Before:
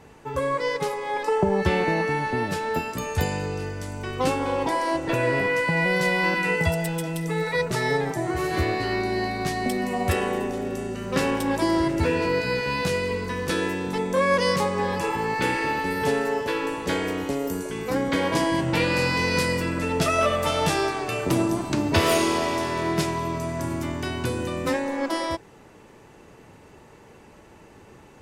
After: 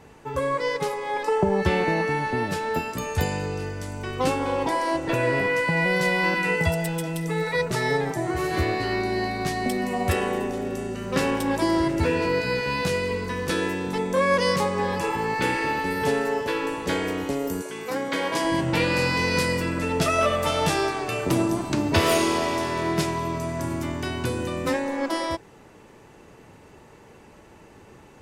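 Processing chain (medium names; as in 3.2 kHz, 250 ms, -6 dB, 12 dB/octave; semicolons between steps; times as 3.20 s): 17.62–18.45 s: high-pass 450 Hz 6 dB/octave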